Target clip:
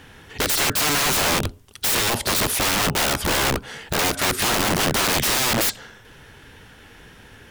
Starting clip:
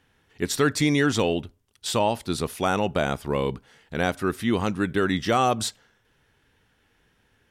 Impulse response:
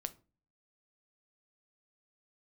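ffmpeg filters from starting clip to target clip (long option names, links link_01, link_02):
-af "acompressor=threshold=-28dB:ratio=5,apsyclip=26dB,aeval=exprs='(mod(2.51*val(0)+1,2)-1)/2.51':channel_layout=same,volume=-7dB"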